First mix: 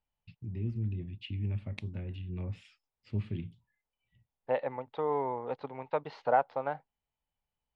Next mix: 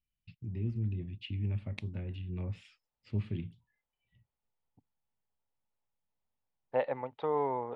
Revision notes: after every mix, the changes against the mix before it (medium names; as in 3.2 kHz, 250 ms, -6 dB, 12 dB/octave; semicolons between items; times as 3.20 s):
second voice: entry +2.25 s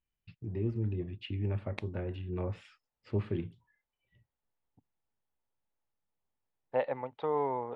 first voice: add high-order bell 740 Hz +11 dB 2.7 oct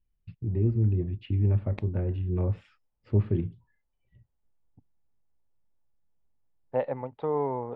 master: add tilt EQ -3 dB/octave